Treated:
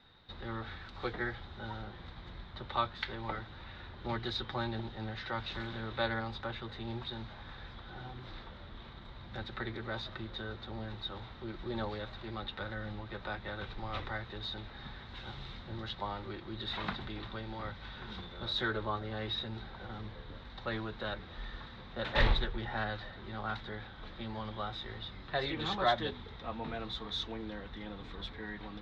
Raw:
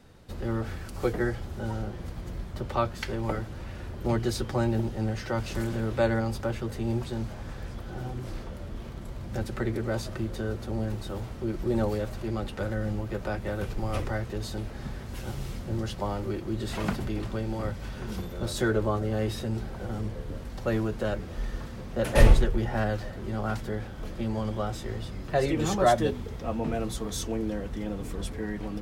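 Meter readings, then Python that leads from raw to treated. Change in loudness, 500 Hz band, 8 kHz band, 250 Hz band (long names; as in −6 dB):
−8.5 dB, −11.0 dB, below −20 dB, −12.0 dB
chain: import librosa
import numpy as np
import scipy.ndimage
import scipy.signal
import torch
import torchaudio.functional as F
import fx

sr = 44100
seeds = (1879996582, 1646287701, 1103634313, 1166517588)

y = fx.ladder_lowpass(x, sr, hz=3900.0, resonance_pct=85)
y = fx.band_shelf(y, sr, hz=1300.0, db=8.5, octaves=1.7)
y = fx.doppler_dist(y, sr, depth_ms=0.37)
y = F.gain(torch.from_numpy(y), 1.0).numpy()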